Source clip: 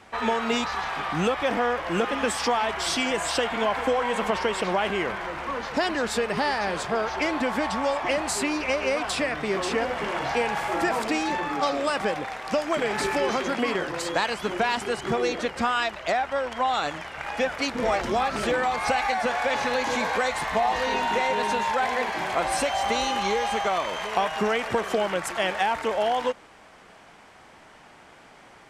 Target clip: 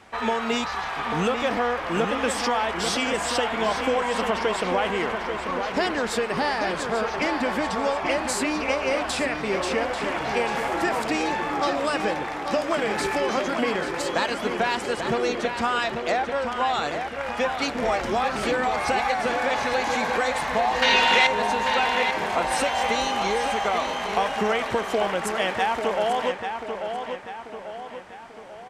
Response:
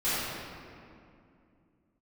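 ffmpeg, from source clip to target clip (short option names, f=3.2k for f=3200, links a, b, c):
-filter_complex "[0:a]asettb=1/sr,asplit=3[a][b][c];[a]atrim=end=20.824[d];[b]atrim=start=20.82:end=21.27,asetpts=PTS-STARTPTS,afade=t=in:d=0.004:c=qsin,afade=t=out:st=0.446:d=0.004:c=qsin,equalizer=f=3.2k:w=0.56:g=14[e];[c]atrim=start=21.266[f];[d][e]acrossfade=d=0.004:c1=hsin:c2=qsin[g];[g][f]acrossfade=d=0.004:c1=qsin:c2=hsin,asplit=2[h][i];[i]adelay=840,lowpass=f=4.4k:p=1,volume=-6.5dB,asplit=2[j][k];[k]adelay=840,lowpass=f=4.4k:p=1,volume=0.5,asplit=2[l][m];[m]adelay=840,lowpass=f=4.4k:p=1,volume=0.5,asplit=2[n][o];[o]adelay=840,lowpass=f=4.4k:p=1,volume=0.5,asplit=2[p][q];[q]adelay=840,lowpass=f=4.4k:p=1,volume=0.5,asplit=2[r][s];[s]adelay=840,lowpass=f=4.4k:p=1,volume=0.5[t];[h][j][l][n][p][r][t]amix=inputs=7:normalize=0"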